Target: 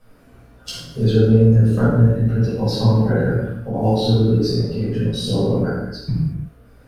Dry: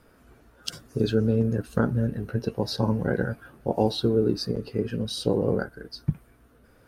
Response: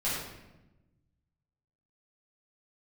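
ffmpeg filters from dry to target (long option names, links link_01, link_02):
-filter_complex "[0:a]equalizer=frequency=1500:width=1.5:gain=-2,asettb=1/sr,asplit=3[link_01][link_02][link_03];[link_01]atrim=end=3.684[link_04];[link_02]atrim=start=3.68:end=5.88,asetpts=PTS-STARTPTS,afade=type=in:duration=0.004:curve=qsin,afade=type=out:start_time=2.196:duration=0.004:curve=qsin,acrossover=split=470[link_05][link_06];[link_06]adelay=50[link_07];[link_05][link_07]amix=inputs=2:normalize=0,atrim=end_sample=97020[link_08];[link_03]atrim=start=5.876[link_09];[link_04][link_08]acrossfade=duration=0.004:curve1=hsin:curve2=qsin[link_10];[link_10][link_09]acrossfade=duration=0.004:curve1=qsin:curve2=hsin[link_11];[1:a]atrim=start_sample=2205,afade=type=out:start_time=0.43:duration=0.01,atrim=end_sample=19404[link_12];[link_11][link_12]afir=irnorm=-1:irlink=0,volume=-1.5dB"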